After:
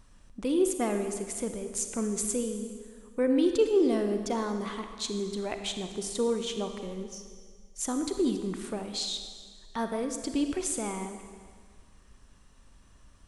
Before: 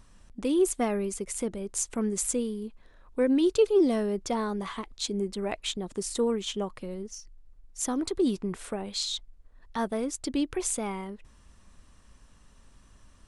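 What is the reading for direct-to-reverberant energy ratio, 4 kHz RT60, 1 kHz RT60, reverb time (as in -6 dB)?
6.0 dB, 1.7 s, 1.7 s, 1.8 s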